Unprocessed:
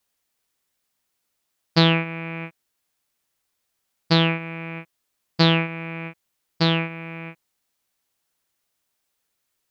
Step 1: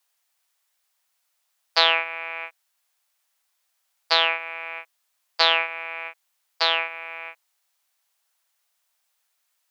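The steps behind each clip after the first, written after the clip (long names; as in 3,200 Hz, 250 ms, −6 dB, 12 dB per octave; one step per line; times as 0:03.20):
inverse Chebyshev high-pass filter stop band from 240 Hz, stop band 50 dB
level +3 dB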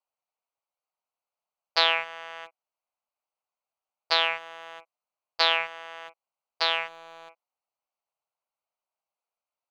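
adaptive Wiener filter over 25 samples
level −3.5 dB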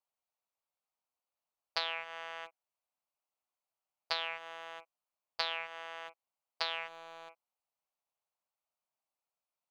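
downward compressor 8 to 1, threshold −27 dBFS, peak gain reduction 12.5 dB
level −3.5 dB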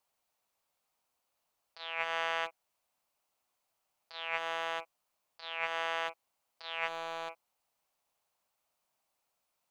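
compressor whose output falls as the input rises −42 dBFS, ratio −0.5
level +7 dB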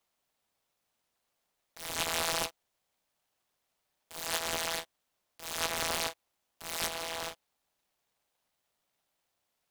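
short delay modulated by noise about 2,300 Hz, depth 0.18 ms
level +2 dB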